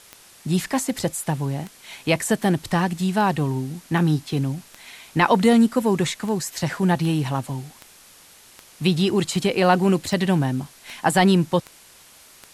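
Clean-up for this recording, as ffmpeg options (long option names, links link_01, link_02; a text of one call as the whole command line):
ffmpeg -i in.wav -af "adeclick=threshold=4,afwtdn=0.0045" out.wav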